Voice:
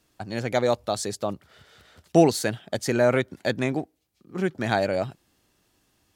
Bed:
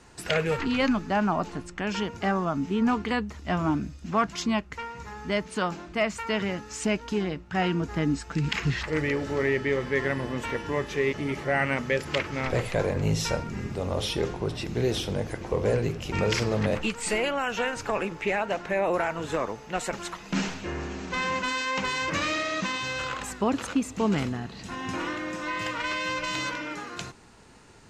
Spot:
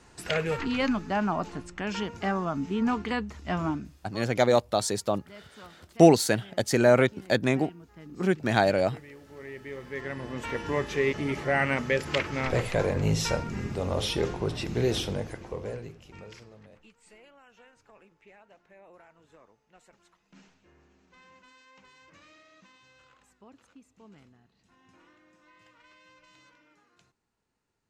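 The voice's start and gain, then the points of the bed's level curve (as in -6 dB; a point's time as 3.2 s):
3.85 s, +1.0 dB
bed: 3.65 s -2.5 dB
4.23 s -21 dB
9.19 s -21 dB
10.67 s 0 dB
15.02 s 0 dB
16.69 s -28.5 dB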